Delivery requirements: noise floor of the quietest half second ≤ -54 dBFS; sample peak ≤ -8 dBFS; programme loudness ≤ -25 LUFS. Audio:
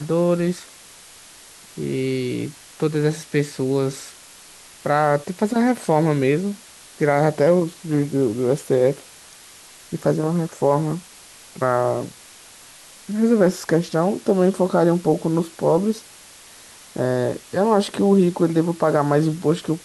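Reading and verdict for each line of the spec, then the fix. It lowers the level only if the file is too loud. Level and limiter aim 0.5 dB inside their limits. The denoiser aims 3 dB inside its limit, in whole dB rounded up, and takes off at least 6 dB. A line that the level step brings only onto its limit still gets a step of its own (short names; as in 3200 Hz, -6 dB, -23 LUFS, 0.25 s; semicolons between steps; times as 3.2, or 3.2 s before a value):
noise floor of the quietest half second -45 dBFS: fail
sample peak -5.5 dBFS: fail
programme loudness -20.5 LUFS: fail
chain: denoiser 7 dB, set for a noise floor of -45 dBFS; gain -5 dB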